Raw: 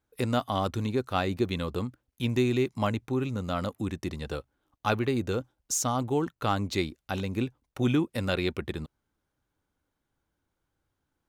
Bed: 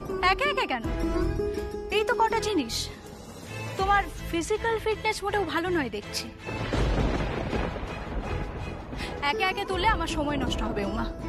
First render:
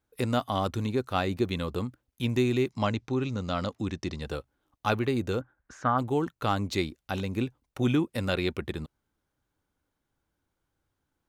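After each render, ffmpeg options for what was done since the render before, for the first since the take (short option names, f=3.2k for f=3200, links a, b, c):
-filter_complex "[0:a]asettb=1/sr,asplit=3[a][b][c];[a]atrim=end=2.724[d];[b]atrim=start=2.72:end=4.21,asetpts=PTS-STARTPTS,afade=t=in:d=0.004:c=qsin,afade=t=out:st=1.486:d=0.004:c=qsin,lowpass=f=5.5k:t=q:w=1.8[e];[c]atrim=start=4.206[f];[d][e]acrossfade=d=0.004:c1=hsin:c2=qsin[g];[g][f]acrossfade=d=0.004:c1=qsin:c2=hsin,asplit=3[h][i][j];[h]afade=t=out:st=5.4:d=0.02[k];[i]lowpass=f=1.6k:t=q:w=5.7,afade=t=in:st=5.4:d=0.02,afade=t=out:st=5.97:d=0.02[l];[j]afade=t=in:st=5.97:d=0.02[m];[k][l][m]amix=inputs=3:normalize=0"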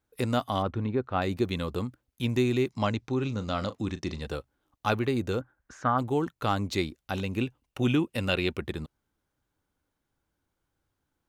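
-filter_complex "[0:a]asettb=1/sr,asplit=3[a][b][c];[a]atrim=end=0.624[d];[b]atrim=start=0.62:end=1.22,asetpts=PTS-STARTPTS,afade=t=in:d=0.004:c=qsin,afade=t=out:st=0.596:d=0.004:c=qsin,lowpass=2k[e];[c]atrim=start=1.216[f];[d][e]acrossfade=d=0.004:c1=hsin:c2=qsin[g];[g][f]acrossfade=d=0.004:c1=qsin:c2=hsin,asettb=1/sr,asplit=3[h][i][j];[h]atrim=end=3.154[k];[i]atrim=start=3.15:end=4.27,asetpts=PTS-STARTPTS,afade=t=in:d=0.004:c=qsin,afade=t=out:st=1.116:d=0.004:c=qsin,asplit=2[l][m];[m]adelay=37,volume=-13.5dB[n];[l][n]amix=inputs=2:normalize=0,atrim=end_sample=49392[o];[j]atrim=start=4.266[p];[k][o]acrossfade=d=0.004:c1=hsin:c2=qsin[q];[q][p]acrossfade=d=0.004:c1=qsin:c2=hsin,asettb=1/sr,asplit=3[r][s][t];[r]atrim=end=7.224[u];[s]atrim=start=7.22:end=8.55,asetpts=PTS-STARTPTS,afade=t=in:d=0.004:c=qsin,afade=t=out:st=1.326:d=0.004:c=qsin,equalizer=f=2.8k:t=o:w=0.23:g=9.5[v];[t]atrim=start=8.546[w];[u][v]acrossfade=d=0.004:c1=hsin:c2=qsin[x];[x][w]acrossfade=d=0.004:c1=qsin:c2=hsin"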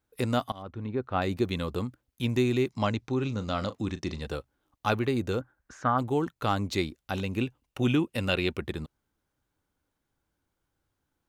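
-filter_complex "[0:a]asplit=2[a][b];[a]atrim=end=0.52,asetpts=PTS-STARTPTS,afade=t=out:st=0.516:d=0.004:c=hsin:silence=0.0707946[c];[b]atrim=start=0.52,asetpts=PTS-STARTPTS,afade=t=in:d=0.62:silence=0.0707946[d];[c][d]concat=n=2:v=0:a=1"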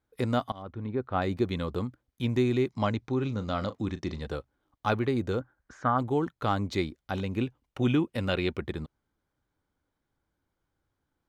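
-af "highshelf=f=5.9k:g=-11.5,bandreject=f=2.7k:w=12"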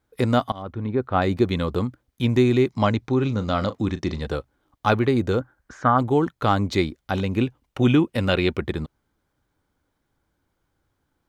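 -af "volume=7.5dB"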